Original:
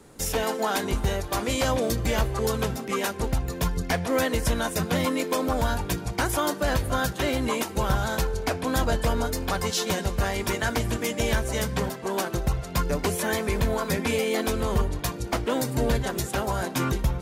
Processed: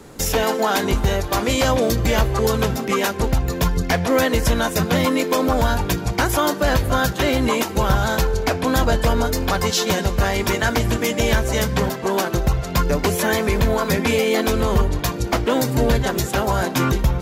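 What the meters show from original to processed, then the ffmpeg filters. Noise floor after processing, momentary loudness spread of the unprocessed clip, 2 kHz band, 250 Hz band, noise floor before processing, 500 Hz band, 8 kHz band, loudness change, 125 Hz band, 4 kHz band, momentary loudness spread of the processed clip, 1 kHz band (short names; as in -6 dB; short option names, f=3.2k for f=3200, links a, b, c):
-28 dBFS, 3 LU, +7.0 dB, +7.0 dB, -36 dBFS, +7.0 dB, +5.0 dB, +7.0 dB, +7.0 dB, +7.0 dB, 3 LU, +7.0 dB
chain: -filter_complex "[0:a]equalizer=f=9.2k:t=o:w=0.29:g=-8,asplit=2[a][b];[b]alimiter=limit=-21.5dB:level=0:latency=1:release=196,volume=0.5dB[c];[a][c]amix=inputs=2:normalize=0,volume=3dB"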